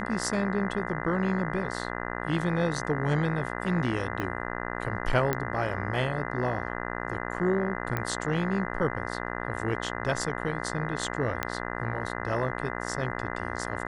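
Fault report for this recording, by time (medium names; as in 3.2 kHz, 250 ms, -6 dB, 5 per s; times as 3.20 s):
buzz 60 Hz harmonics 34 -34 dBFS
4.20 s: pop -18 dBFS
5.33 s: pop -12 dBFS
7.97 s: pop -16 dBFS
11.43 s: pop -12 dBFS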